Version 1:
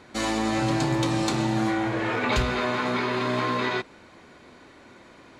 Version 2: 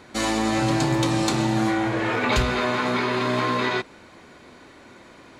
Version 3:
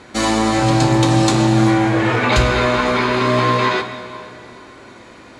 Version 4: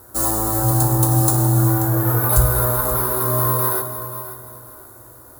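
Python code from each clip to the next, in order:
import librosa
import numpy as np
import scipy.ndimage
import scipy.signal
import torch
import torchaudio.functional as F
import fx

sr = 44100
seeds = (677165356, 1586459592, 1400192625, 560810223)

y1 = fx.high_shelf(x, sr, hz=9000.0, db=5.0)
y1 = y1 * librosa.db_to_amplitude(2.5)
y2 = scipy.signal.sosfilt(scipy.signal.butter(4, 11000.0, 'lowpass', fs=sr, output='sos'), y1)
y2 = fx.doubler(y2, sr, ms=18.0, db=-11.5)
y2 = fx.rev_plate(y2, sr, seeds[0], rt60_s=2.7, hf_ratio=0.8, predelay_ms=0, drr_db=8.0)
y2 = y2 * librosa.db_to_amplitude(5.5)
y3 = np.repeat(y2[::3], 3)[:len(y2)]
y3 = fx.curve_eq(y3, sr, hz=(120.0, 180.0, 320.0, 1400.0, 2400.0, 11000.0), db=(0, -20, -8, -7, -29, 10))
y3 = fx.echo_feedback(y3, sr, ms=533, feedback_pct=31, wet_db=-13.5)
y3 = y3 * librosa.db_to_amplitude(1.0)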